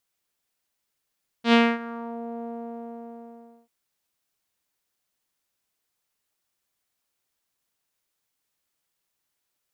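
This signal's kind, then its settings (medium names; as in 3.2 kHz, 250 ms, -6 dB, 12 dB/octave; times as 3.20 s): synth note saw A#3 12 dB/octave, low-pass 690 Hz, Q 2, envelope 2.5 oct, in 0.75 s, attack 90 ms, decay 0.25 s, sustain -20 dB, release 1.24 s, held 1.00 s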